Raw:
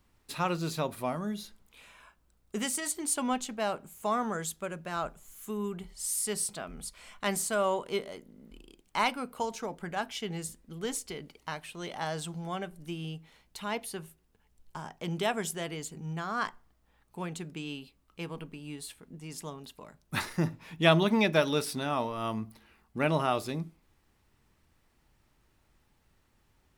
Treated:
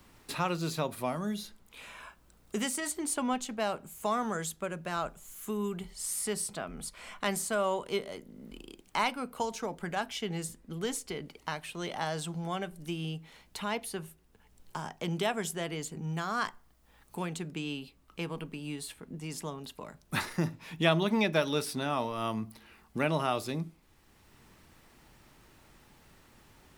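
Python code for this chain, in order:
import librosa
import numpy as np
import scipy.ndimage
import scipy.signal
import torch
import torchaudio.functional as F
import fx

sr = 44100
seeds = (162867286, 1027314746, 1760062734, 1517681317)

y = fx.high_shelf(x, sr, hz=5600.0, db=5.5, at=(16.13, 17.2))
y = fx.band_squash(y, sr, depth_pct=40)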